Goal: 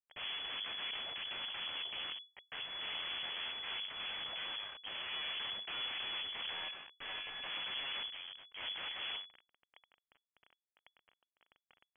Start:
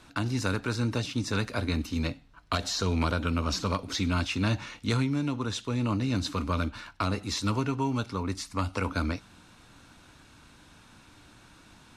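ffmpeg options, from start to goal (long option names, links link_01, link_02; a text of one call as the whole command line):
ffmpeg -i in.wav -filter_complex "[0:a]bandreject=frequency=50:width_type=h:width=6,bandreject=frequency=100:width_type=h:width=6,bandreject=frequency=150:width_type=h:width=6,bandreject=frequency=200:width_type=h:width=6,bandreject=frequency=250:width_type=h:width=6,bandreject=frequency=300:width_type=h:width=6,bandreject=frequency=350:width_type=h:width=6,bandreject=frequency=400:width_type=h:width=6,asplit=3[link_01][link_02][link_03];[link_01]afade=type=out:start_time=8.09:duration=0.02[link_04];[link_02]acompressor=threshold=-44dB:ratio=3,afade=type=in:start_time=8.09:duration=0.02,afade=type=out:start_time=8.6:duration=0.02[link_05];[link_03]afade=type=in:start_time=8.6:duration=0.02[link_06];[link_04][link_05][link_06]amix=inputs=3:normalize=0,acrossover=split=630[link_07][link_08];[link_07]aeval=exprs='val(0)*(1-0.5/2+0.5/2*cos(2*PI*3.2*n/s))':channel_layout=same[link_09];[link_08]aeval=exprs='val(0)*(1-0.5/2-0.5/2*cos(2*PI*3.2*n/s))':channel_layout=same[link_10];[link_09][link_10]amix=inputs=2:normalize=0,asoftclip=type=tanh:threshold=-26dB,asettb=1/sr,asplit=3[link_11][link_12][link_13];[link_11]atrim=end=2.684[link_14];[link_12]atrim=start=2.68:end=3.29,asetpts=PTS-STARTPTS,afade=type=in:duration=0.004:curve=qsin,afade=type=out:start_time=0.606:duration=0.004:curve=qsin,aeval=exprs='val(0)+0.00316*(sin(2*PI*50*n/s)+sin(2*PI*2*50*n/s)/2+sin(2*PI*3*50*n/s)/3+sin(2*PI*4*50*n/s)/4+sin(2*PI*5*50*n/s)/5)':channel_layout=same[link_15];[link_13]atrim=start=3.286[link_16];[link_14][link_15]acrossfade=duration=0.004:curve1=hsin:curve2=qsin[link_17];[link_17][link_16]acrossfade=duration=0.004:curve1=qsin:curve2=hsin,asettb=1/sr,asplit=3[link_18][link_19][link_20];[link_18]atrim=end=6.534[link_21];[link_19]atrim=start=6.53:end=7.47,asetpts=PTS-STARTPTS,afade=type=in:duration=0.004:curve=qsin,afade=type=out:start_time=0.936:duration=0.004:curve=qsin,aeval=exprs='val(0)*sin(2*PI*850*n/s)':channel_layout=same[link_22];[link_20]atrim=start=7.466[link_23];[link_21][link_22]acrossfade=duration=0.004:curve1=hsin:curve2=qsin[link_24];[link_24][link_23]acrossfade=duration=0.004:curve1=qsin:curve2=hsin,aeval=exprs='(mod(47.3*val(0)+1,2)-1)/47.3':channel_layout=same,acrusher=bits=5:dc=4:mix=0:aa=0.000001,lowpass=frequency=2900:width_type=q:width=0.5098,lowpass=frequency=2900:width_type=q:width=0.6013,lowpass=frequency=2900:width_type=q:width=0.9,lowpass=frequency=2900:width_type=q:width=2.563,afreqshift=-3400,volume=1dB" out.wav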